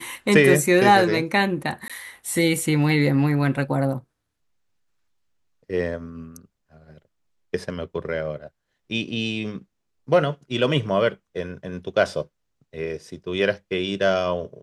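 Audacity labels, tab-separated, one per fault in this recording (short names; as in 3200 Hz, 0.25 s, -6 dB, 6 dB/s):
1.880000	1.900000	gap 16 ms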